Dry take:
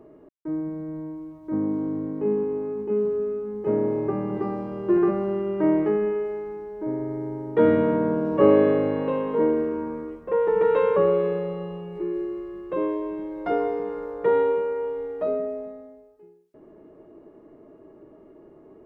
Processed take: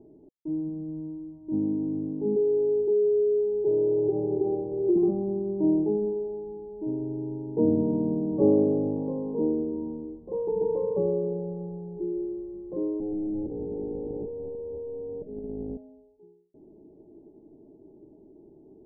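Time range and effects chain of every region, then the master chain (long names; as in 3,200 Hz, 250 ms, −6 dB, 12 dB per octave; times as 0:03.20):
0:02.36–0:04.96: drawn EQ curve 150 Hz 0 dB, 220 Hz −15 dB, 390 Hz +11 dB, 1,900 Hz −9 dB + downward compressor 4 to 1, threshold −17 dBFS
0:13.00–0:15.77: sign of each sample alone + Chebyshev low-pass filter 580 Hz, order 10 + highs frequency-modulated by the lows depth 0.28 ms
whole clip: elliptic low-pass filter 820 Hz, stop band 40 dB; parametric band 640 Hz −11 dB 0.82 octaves; notch filter 490 Hz, Q 12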